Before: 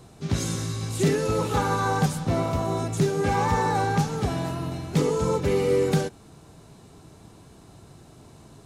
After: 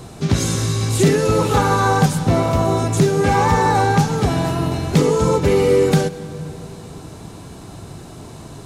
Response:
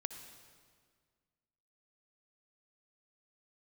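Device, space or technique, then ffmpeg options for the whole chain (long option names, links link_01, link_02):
ducked reverb: -filter_complex "[0:a]asplit=3[link_01][link_02][link_03];[1:a]atrim=start_sample=2205[link_04];[link_02][link_04]afir=irnorm=-1:irlink=0[link_05];[link_03]apad=whole_len=381536[link_06];[link_05][link_06]sidechaincompress=threshold=-29dB:ratio=8:attack=16:release=640,volume=6dB[link_07];[link_01][link_07]amix=inputs=2:normalize=0,volume=4.5dB"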